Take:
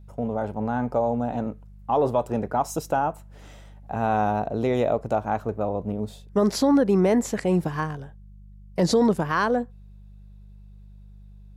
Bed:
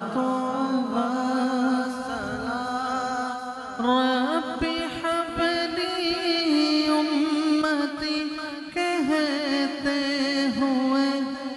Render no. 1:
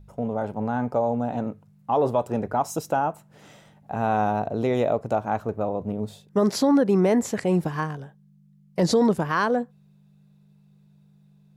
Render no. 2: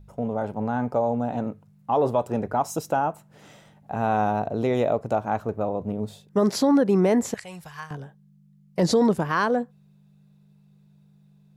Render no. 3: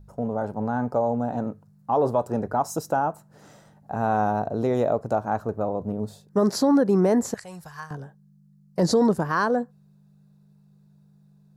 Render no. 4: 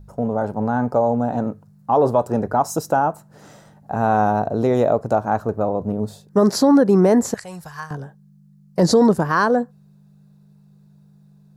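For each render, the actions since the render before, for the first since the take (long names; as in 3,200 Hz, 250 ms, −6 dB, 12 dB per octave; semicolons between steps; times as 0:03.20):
hum removal 50 Hz, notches 2
0:07.34–0:07.91: guitar amp tone stack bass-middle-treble 10-0-10
flat-topped bell 2,700 Hz −8.5 dB 1 octave
level +5.5 dB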